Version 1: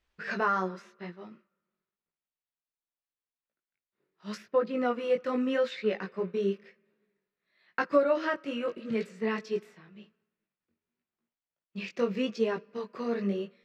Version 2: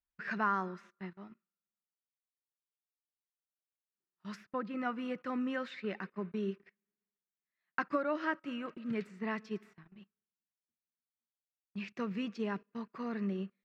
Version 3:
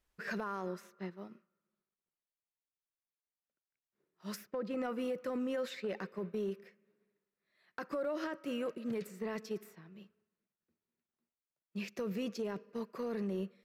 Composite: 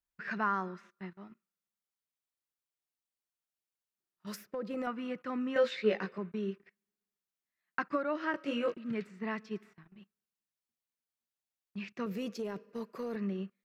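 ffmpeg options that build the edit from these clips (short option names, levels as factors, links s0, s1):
-filter_complex "[2:a]asplit=2[s0][s1];[0:a]asplit=2[s2][s3];[1:a]asplit=5[s4][s5][s6][s7][s8];[s4]atrim=end=4.272[s9];[s0]atrim=start=4.268:end=4.872[s10];[s5]atrim=start=4.868:end=5.562[s11];[s2]atrim=start=5.558:end=6.182[s12];[s6]atrim=start=6.178:end=8.342[s13];[s3]atrim=start=8.338:end=8.742[s14];[s7]atrim=start=8.738:end=12.062[s15];[s1]atrim=start=12.058:end=13.162[s16];[s8]atrim=start=13.158[s17];[s9][s10]acrossfade=d=0.004:c1=hsin:c2=hsin[s18];[s18][s11]acrossfade=d=0.004:c1=hsin:c2=hsin[s19];[s19][s12]acrossfade=d=0.004:c1=hsin:c2=hsin[s20];[s20][s13]acrossfade=d=0.004:c1=hsin:c2=hsin[s21];[s21][s14]acrossfade=d=0.004:c1=hsin:c2=hsin[s22];[s22][s15]acrossfade=d=0.004:c1=hsin:c2=hsin[s23];[s23][s16]acrossfade=d=0.004:c1=hsin:c2=hsin[s24];[s24][s17]acrossfade=d=0.004:c1=hsin:c2=hsin"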